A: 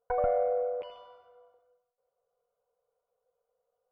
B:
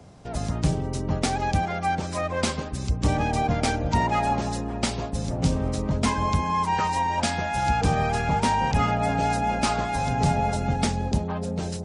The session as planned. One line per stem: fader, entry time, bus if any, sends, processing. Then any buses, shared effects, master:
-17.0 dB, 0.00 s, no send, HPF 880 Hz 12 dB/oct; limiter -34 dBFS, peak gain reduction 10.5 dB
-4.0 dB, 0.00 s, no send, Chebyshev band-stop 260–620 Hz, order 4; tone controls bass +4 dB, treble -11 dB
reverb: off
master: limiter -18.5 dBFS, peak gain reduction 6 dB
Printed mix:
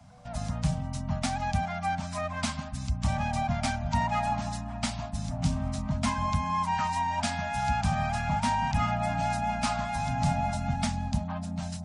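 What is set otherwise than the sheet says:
stem B: missing tone controls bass +4 dB, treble -11 dB; master: missing limiter -18.5 dBFS, peak gain reduction 6 dB

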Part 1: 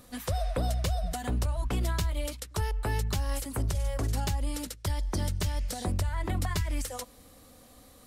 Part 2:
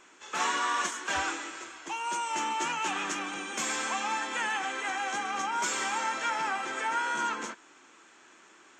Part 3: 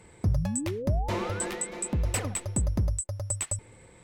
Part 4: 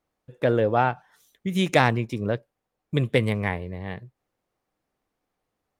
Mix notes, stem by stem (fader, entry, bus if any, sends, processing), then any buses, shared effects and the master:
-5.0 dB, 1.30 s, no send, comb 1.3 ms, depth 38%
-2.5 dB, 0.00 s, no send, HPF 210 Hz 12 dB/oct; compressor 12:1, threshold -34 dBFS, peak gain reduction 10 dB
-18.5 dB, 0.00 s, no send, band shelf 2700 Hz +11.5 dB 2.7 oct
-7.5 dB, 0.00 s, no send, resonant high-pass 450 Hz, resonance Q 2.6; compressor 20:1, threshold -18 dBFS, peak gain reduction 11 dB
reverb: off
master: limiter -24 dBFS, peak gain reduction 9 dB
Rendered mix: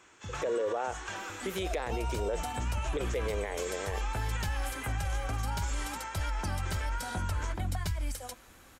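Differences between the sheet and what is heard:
stem 3: missing band shelf 2700 Hz +11.5 dB 2.7 oct; stem 4 -7.5 dB -> -1.0 dB

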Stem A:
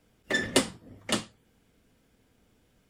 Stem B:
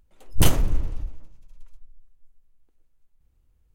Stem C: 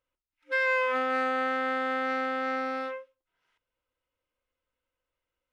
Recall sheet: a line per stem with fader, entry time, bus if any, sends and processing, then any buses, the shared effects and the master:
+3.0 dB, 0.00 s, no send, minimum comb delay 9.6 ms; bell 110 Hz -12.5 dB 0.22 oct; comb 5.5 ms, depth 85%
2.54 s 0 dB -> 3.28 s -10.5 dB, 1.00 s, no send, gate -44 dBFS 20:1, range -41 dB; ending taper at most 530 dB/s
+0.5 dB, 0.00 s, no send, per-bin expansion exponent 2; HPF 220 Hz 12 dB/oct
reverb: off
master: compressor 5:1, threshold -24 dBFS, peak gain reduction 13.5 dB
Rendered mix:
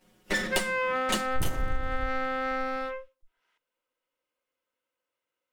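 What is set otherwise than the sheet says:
stem B: missing ending taper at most 530 dB/s; stem C: missing per-bin expansion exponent 2

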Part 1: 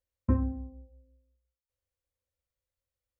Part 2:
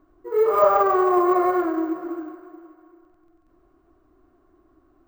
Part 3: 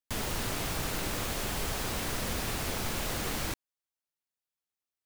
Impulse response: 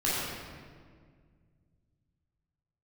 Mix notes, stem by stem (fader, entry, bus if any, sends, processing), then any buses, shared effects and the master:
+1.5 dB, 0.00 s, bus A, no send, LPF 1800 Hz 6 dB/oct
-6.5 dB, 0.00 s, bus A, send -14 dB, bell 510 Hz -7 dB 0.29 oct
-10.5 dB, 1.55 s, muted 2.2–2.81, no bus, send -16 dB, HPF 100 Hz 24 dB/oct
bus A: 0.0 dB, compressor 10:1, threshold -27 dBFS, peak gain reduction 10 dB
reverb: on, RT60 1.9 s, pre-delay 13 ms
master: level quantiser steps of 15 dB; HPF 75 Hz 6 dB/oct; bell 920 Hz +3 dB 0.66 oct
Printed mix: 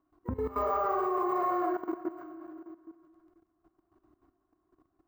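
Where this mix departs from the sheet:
stem 1 +1.5 dB -> +10.0 dB; stem 3: muted

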